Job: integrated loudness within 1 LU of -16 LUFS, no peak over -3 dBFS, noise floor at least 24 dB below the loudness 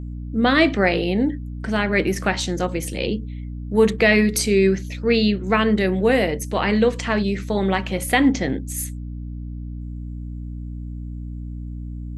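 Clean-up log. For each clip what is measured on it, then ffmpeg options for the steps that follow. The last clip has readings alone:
hum 60 Hz; highest harmonic 300 Hz; hum level -28 dBFS; loudness -20.0 LUFS; peak level -3.0 dBFS; loudness target -16.0 LUFS
-> -af "bandreject=f=60:t=h:w=6,bandreject=f=120:t=h:w=6,bandreject=f=180:t=h:w=6,bandreject=f=240:t=h:w=6,bandreject=f=300:t=h:w=6"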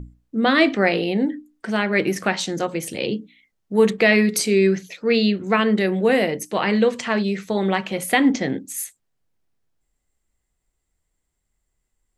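hum not found; loudness -20.5 LUFS; peak level -2.5 dBFS; loudness target -16.0 LUFS
-> -af "volume=1.68,alimiter=limit=0.708:level=0:latency=1"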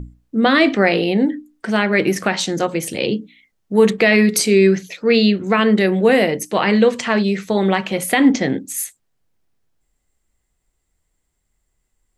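loudness -16.5 LUFS; peak level -3.0 dBFS; noise floor -72 dBFS

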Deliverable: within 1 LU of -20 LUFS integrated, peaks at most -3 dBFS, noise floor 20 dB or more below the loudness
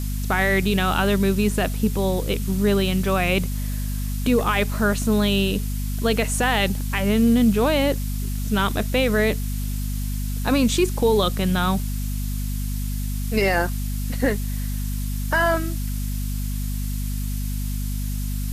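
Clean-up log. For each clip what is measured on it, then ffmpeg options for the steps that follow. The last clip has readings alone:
hum 50 Hz; highest harmonic 250 Hz; hum level -23 dBFS; noise floor -26 dBFS; noise floor target -43 dBFS; loudness -22.5 LUFS; peak level -8.0 dBFS; loudness target -20.0 LUFS
-> -af "bandreject=f=50:t=h:w=4,bandreject=f=100:t=h:w=4,bandreject=f=150:t=h:w=4,bandreject=f=200:t=h:w=4,bandreject=f=250:t=h:w=4"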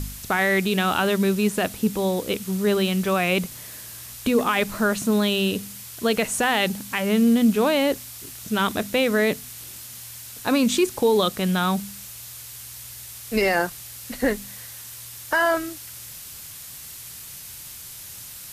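hum not found; noise floor -40 dBFS; noise floor target -43 dBFS
-> -af "afftdn=nr=6:nf=-40"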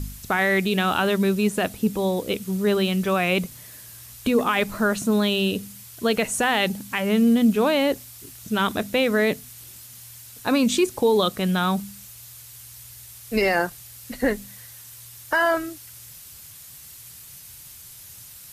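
noise floor -44 dBFS; loudness -22.5 LUFS; peak level -9.0 dBFS; loudness target -20.0 LUFS
-> -af "volume=1.33"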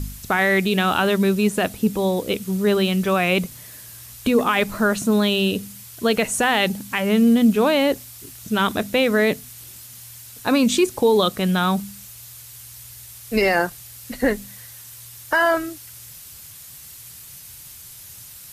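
loudness -20.0 LUFS; peak level -6.5 dBFS; noise floor -41 dBFS

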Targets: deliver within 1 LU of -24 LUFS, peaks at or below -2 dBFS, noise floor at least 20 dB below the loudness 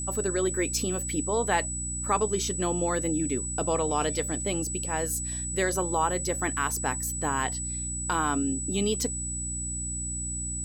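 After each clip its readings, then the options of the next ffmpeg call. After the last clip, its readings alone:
hum 60 Hz; highest harmonic 300 Hz; hum level -34 dBFS; steady tone 7.9 kHz; tone level -32 dBFS; loudness -28.0 LUFS; peak level -12.0 dBFS; loudness target -24.0 LUFS
-> -af "bandreject=f=60:t=h:w=6,bandreject=f=120:t=h:w=6,bandreject=f=180:t=h:w=6,bandreject=f=240:t=h:w=6,bandreject=f=300:t=h:w=6"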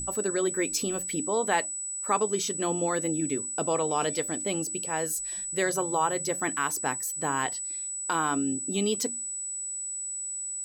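hum not found; steady tone 7.9 kHz; tone level -32 dBFS
-> -af "bandreject=f=7900:w=30"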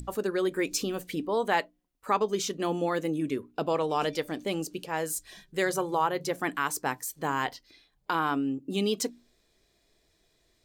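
steady tone not found; loudness -30.0 LUFS; peak level -12.0 dBFS; loudness target -24.0 LUFS
-> -af "volume=2"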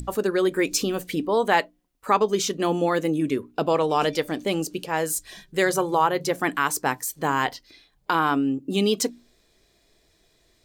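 loudness -24.0 LUFS; peak level -6.0 dBFS; noise floor -64 dBFS

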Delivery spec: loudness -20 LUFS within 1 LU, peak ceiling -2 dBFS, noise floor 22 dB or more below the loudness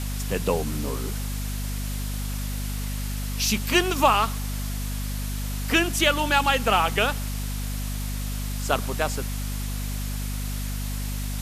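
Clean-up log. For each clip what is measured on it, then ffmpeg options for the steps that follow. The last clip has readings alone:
hum 50 Hz; highest harmonic 250 Hz; hum level -27 dBFS; noise floor -29 dBFS; noise floor target -48 dBFS; loudness -26.0 LUFS; peak level -5.0 dBFS; loudness target -20.0 LUFS
-> -af "bandreject=f=50:t=h:w=6,bandreject=f=100:t=h:w=6,bandreject=f=150:t=h:w=6,bandreject=f=200:t=h:w=6,bandreject=f=250:t=h:w=6"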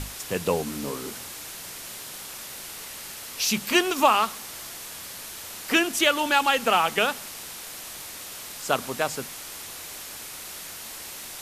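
hum not found; noise floor -39 dBFS; noise floor target -49 dBFS
-> -af "afftdn=nr=10:nf=-39"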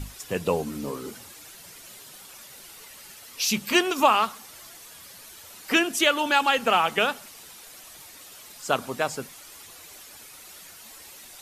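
noise floor -47 dBFS; loudness -24.0 LUFS; peak level -5.0 dBFS; loudness target -20.0 LUFS
-> -af "volume=1.58,alimiter=limit=0.794:level=0:latency=1"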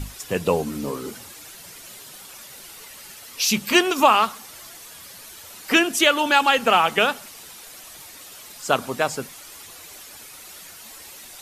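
loudness -20.0 LUFS; peak level -2.0 dBFS; noise floor -43 dBFS

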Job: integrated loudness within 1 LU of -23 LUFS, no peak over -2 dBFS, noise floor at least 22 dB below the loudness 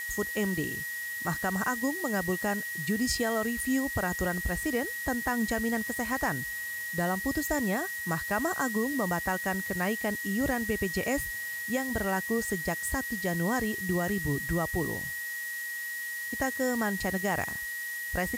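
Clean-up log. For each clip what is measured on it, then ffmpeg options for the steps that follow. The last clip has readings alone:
steady tone 1.9 kHz; tone level -34 dBFS; noise floor -36 dBFS; noise floor target -52 dBFS; loudness -30.0 LUFS; peak level -15.5 dBFS; loudness target -23.0 LUFS
-> -af "bandreject=f=1900:w=30"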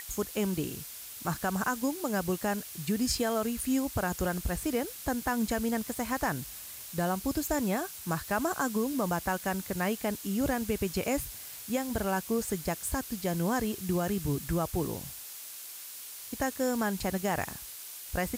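steady tone not found; noise floor -44 dBFS; noise floor target -54 dBFS
-> -af "afftdn=nr=10:nf=-44"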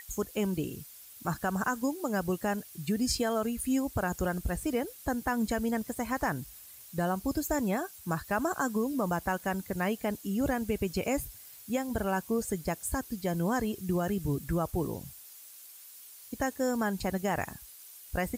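noise floor -51 dBFS; noise floor target -54 dBFS
-> -af "afftdn=nr=6:nf=-51"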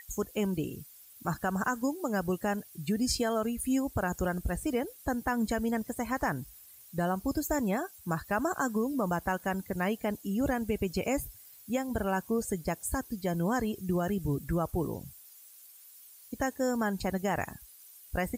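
noise floor -54 dBFS; loudness -32.0 LUFS; peak level -17.5 dBFS; loudness target -23.0 LUFS
-> -af "volume=2.82"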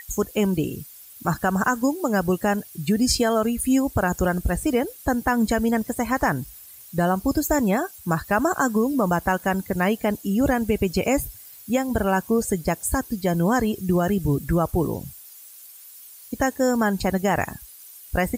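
loudness -23.0 LUFS; peak level -8.5 dBFS; noise floor -45 dBFS

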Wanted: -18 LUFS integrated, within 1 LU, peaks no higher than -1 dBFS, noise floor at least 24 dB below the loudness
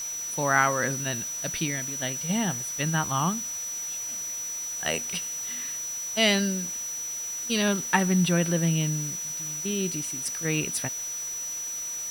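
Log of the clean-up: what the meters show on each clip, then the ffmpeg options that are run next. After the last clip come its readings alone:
steady tone 5.9 kHz; tone level -31 dBFS; noise floor -34 dBFS; noise floor target -51 dBFS; loudness -27.0 LUFS; peak level -6.5 dBFS; loudness target -18.0 LUFS
-> -af "bandreject=f=5900:w=30"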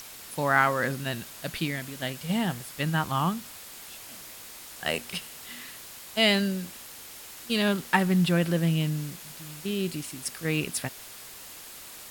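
steady tone not found; noise floor -45 dBFS; noise floor target -52 dBFS
-> -af "afftdn=nr=7:nf=-45"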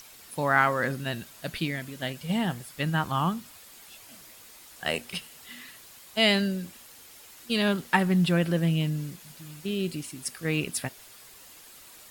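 noise floor -50 dBFS; noise floor target -52 dBFS
-> -af "afftdn=nr=6:nf=-50"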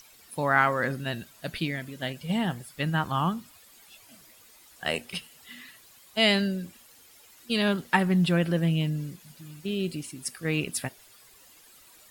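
noise floor -55 dBFS; loudness -28.0 LUFS; peak level -7.0 dBFS; loudness target -18.0 LUFS
-> -af "volume=3.16,alimiter=limit=0.891:level=0:latency=1"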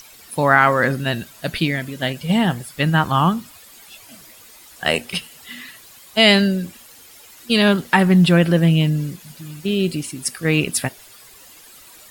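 loudness -18.0 LUFS; peak level -1.0 dBFS; noise floor -45 dBFS

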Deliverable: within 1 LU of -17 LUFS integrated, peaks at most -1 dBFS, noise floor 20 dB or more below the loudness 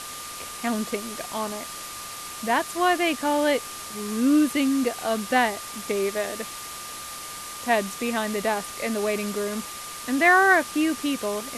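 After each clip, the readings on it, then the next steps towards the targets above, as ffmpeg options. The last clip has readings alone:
steady tone 1.2 kHz; tone level -40 dBFS; noise floor -37 dBFS; noise floor target -45 dBFS; loudness -25.0 LUFS; peak level -7.0 dBFS; loudness target -17.0 LUFS
-> -af "bandreject=f=1200:w=30"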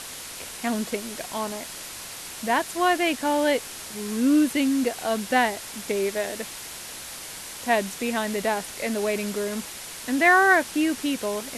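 steady tone not found; noise floor -38 dBFS; noise floor target -45 dBFS
-> -af "afftdn=nr=7:nf=-38"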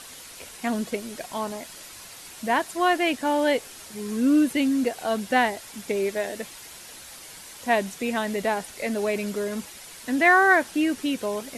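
noise floor -44 dBFS; noise floor target -45 dBFS
-> -af "afftdn=nr=6:nf=-44"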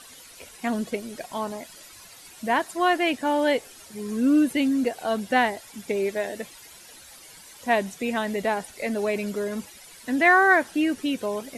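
noise floor -48 dBFS; loudness -24.5 LUFS; peak level -7.5 dBFS; loudness target -17.0 LUFS
-> -af "volume=2.37,alimiter=limit=0.891:level=0:latency=1"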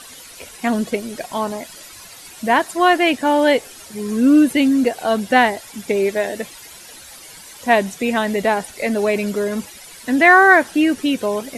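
loudness -17.0 LUFS; peak level -1.0 dBFS; noise floor -40 dBFS

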